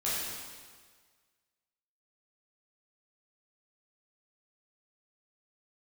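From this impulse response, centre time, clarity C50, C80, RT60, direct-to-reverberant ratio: 0.113 s, -2.0 dB, 0.5 dB, 1.6 s, -9.5 dB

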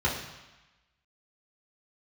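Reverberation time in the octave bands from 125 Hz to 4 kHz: 1.0, 1.0, 0.95, 1.2, 1.2, 1.1 s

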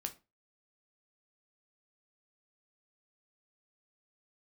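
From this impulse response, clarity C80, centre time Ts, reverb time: 23.0 dB, 7 ms, 0.30 s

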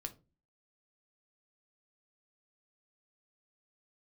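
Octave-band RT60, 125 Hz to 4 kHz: 0.50, 0.50, 0.35, 0.25, 0.20, 0.20 s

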